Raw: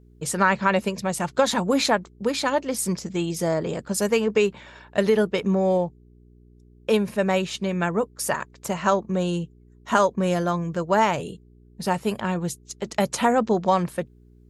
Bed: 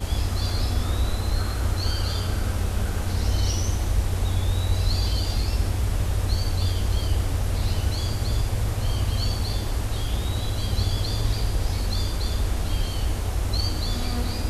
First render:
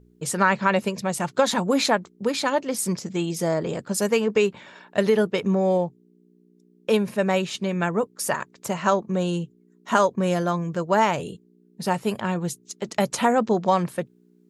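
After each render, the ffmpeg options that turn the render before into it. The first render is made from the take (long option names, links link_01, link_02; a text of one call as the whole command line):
ffmpeg -i in.wav -af "bandreject=frequency=60:width_type=h:width=4,bandreject=frequency=120:width_type=h:width=4" out.wav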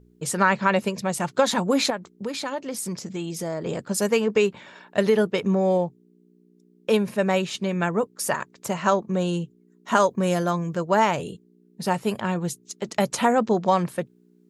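ffmpeg -i in.wav -filter_complex "[0:a]asettb=1/sr,asplit=3[link_01][link_02][link_03];[link_01]atrim=end=1.904[link_04];[link_02]atrim=start=1.9:end=3.66,asetpts=PTS-STARTPTS,afade=type=in:duration=0.004:curve=qsin,afade=type=out:start_time=1.756:duration=0.004:curve=qsin,acompressor=threshold=-30dB:ratio=2:attack=3.2:release=140:knee=1:detection=peak[link_05];[link_03]atrim=start=3.656[link_06];[link_04][link_05]acrossfade=duration=0.004:curve1=hsin:curve2=qsin[link_07];[link_07][link_06]acrossfade=duration=0.004:curve1=qsin:curve2=hsin,asettb=1/sr,asplit=3[link_08][link_09][link_10];[link_08]atrim=end=10.004[link_11];[link_09]atrim=start=10:end=10.75,asetpts=PTS-STARTPTS,afade=type=in:duration=0.004:curve=qsin,afade=type=out:start_time=0.746:duration=0.004:curve=qsin,highshelf=frequency=9000:gain=9[link_12];[link_10]atrim=start=10.746[link_13];[link_11][link_12]acrossfade=duration=0.004:curve1=hsin:curve2=qsin[link_14];[link_14][link_13]acrossfade=duration=0.004:curve1=qsin:curve2=hsin" out.wav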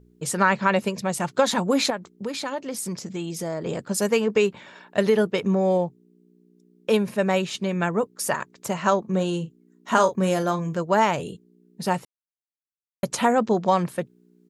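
ffmpeg -i in.wav -filter_complex "[0:a]asplit=3[link_01][link_02][link_03];[link_01]afade=type=out:start_time=9.04:duration=0.02[link_04];[link_02]asplit=2[link_05][link_06];[link_06]adelay=37,volume=-10.5dB[link_07];[link_05][link_07]amix=inputs=2:normalize=0,afade=type=in:start_time=9.04:duration=0.02,afade=type=out:start_time=10.77:duration=0.02[link_08];[link_03]afade=type=in:start_time=10.77:duration=0.02[link_09];[link_04][link_08][link_09]amix=inputs=3:normalize=0,asplit=3[link_10][link_11][link_12];[link_10]atrim=end=12.05,asetpts=PTS-STARTPTS,afade=type=out:start_time=12.046:duration=0.004:curve=hsin[link_13];[link_11]atrim=start=12.05:end=13.03,asetpts=PTS-STARTPTS,volume=0[link_14];[link_12]atrim=start=13.03,asetpts=PTS-STARTPTS,afade=type=in:duration=0.004:curve=hsin[link_15];[link_13][link_14][link_15]concat=n=3:v=0:a=1" out.wav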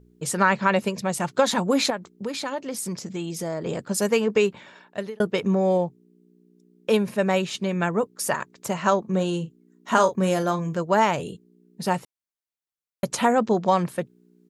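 ffmpeg -i in.wav -filter_complex "[0:a]asplit=2[link_01][link_02];[link_01]atrim=end=5.2,asetpts=PTS-STARTPTS,afade=type=out:start_time=4.35:duration=0.85:curve=qsin[link_03];[link_02]atrim=start=5.2,asetpts=PTS-STARTPTS,afade=type=in:duration=0.004:curve=hsin[link_04];[link_03][link_04]concat=n=2:v=0:a=1" out.wav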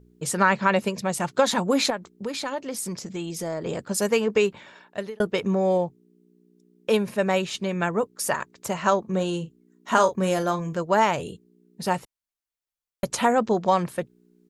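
ffmpeg -i in.wav -af "asubboost=boost=3.5:cutoff=71" out.wav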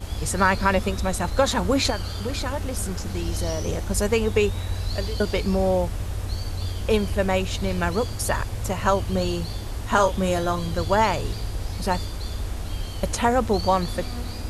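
ffmpeg -i in.wav -i bed.wav -filter_complex "[1:a]volume=-5dB[link_01];[0:a][link_01]amix=inputs=2:normalize=0" out.wav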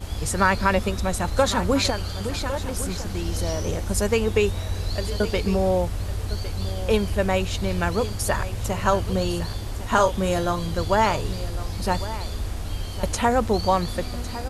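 ffmpeg -i in.wav -af "aecho=1:1:1105:0.188" out.wav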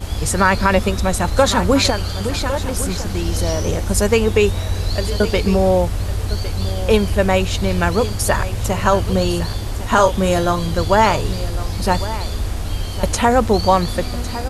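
ffmpeg -i in.wav -af "volume=6.5dB,alimiter=limit=-2dB:level=0:latency=1" out.wav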